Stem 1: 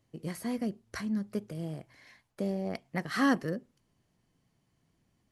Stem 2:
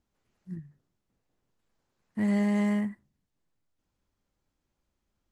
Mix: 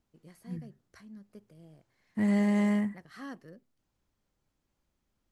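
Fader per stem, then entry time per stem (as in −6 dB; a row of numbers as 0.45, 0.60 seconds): −17.0, 0.0 decibels; 0.00, 0.00 seconds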